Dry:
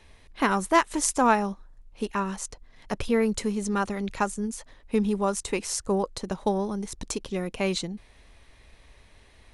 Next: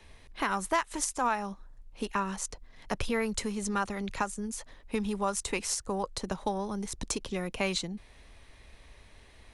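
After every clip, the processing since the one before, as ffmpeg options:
-filter_complex "[0:a]acrossover=split=140|630|3400[a][b][c][d];[b]acompressor=threshold=-34dB:ratio=6[e];[a][e][c][d]amix=inputs=4:normalize=0,alimiter=limit=-17dB:level=0:latency=1:release=355"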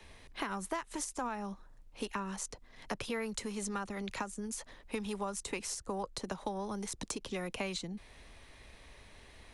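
-filter_complex "[0:a]acrossover=split=120|420[a][b][c];[a]acompressor=threshold=-55dB:ratio=4[d];[b]acompressor=threshold=-42dB:ratio=4[e];[c]acompressor=threshold=-39dB:ratio=4[f];[d][e][f]amix=inputs=3:normalize=0,volume=1dB"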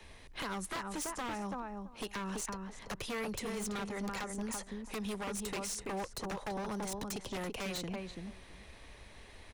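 -filter_complex "[0:a]asplit=2[a][b];[b]adelay=334,lowpass=f=1.4k:p=1,volume=-4dB,asplit=2[c][d];[d]adelay=334,lowpass=f=1.4k:p=1,volume=0.15,asplit=2[e][f];[f]adelay=334,lowpass=f=1.4k:p=1,volume=0.15[g];[c][e][g]amix=inputs=3:normalize=0[h];[a][h]amix=inputs=2:normalize=0,aeval=exprs='0.0211*(abs(mod(val(0)/0.0211+3,4)-2)-1)':c=same,volume=1dB"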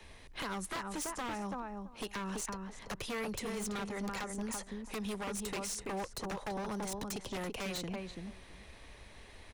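-af anull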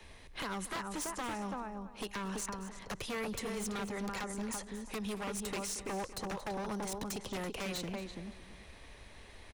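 -af "aecho=1:1:228:0.188"

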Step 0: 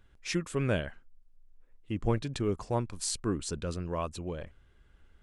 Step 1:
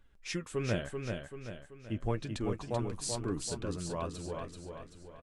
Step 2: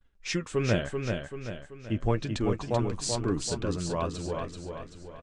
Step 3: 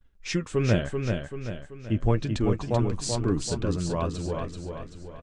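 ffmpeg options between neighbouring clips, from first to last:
-af "flanger=delay=3.3:depth=6.8:regen=50:speed=0.82:shape=triangular,aecho=1:1:385|770|1155|1540|1925|2310:0.562|0.259|0.119|0.0547|0.0252|0.0116"
-af "lowpass=f=8k:w=0.5412,lowpass=f=8k:w=1.3066,agate=range=-33dB:threshold=-54dB:ratio=3:detection=peak,volume=6.5dB"
-af "lowshelf=f=310:g=5.5"

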